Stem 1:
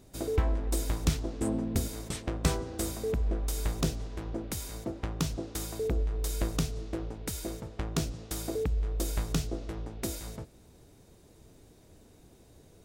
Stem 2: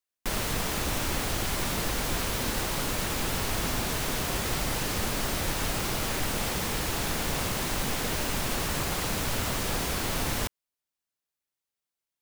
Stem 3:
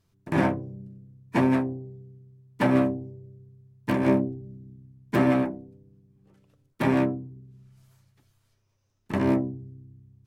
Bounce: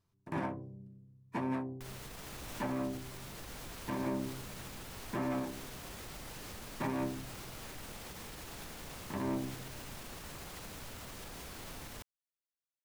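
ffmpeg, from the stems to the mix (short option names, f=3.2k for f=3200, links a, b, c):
-filter_complex "[1:a]alimiter=limit=-23.5dB:level=0:latency=1:release=67,dynaudnorm=f=270:g=9:m=9dB,adelay=1550,volume=-15dB,afade=t=out:st=2.56:d=0.34:silence=0.421697[a];[2:a]equalizer=f=1k:t=o:w=0.6:g=6,volume=-9.5dB[b];[a][b]amix=inputs=2:normalize=0,alimiter=level_in=1.5dB:limit=-24dB:level=0:latency=1:release=163,volume=-1.5dB"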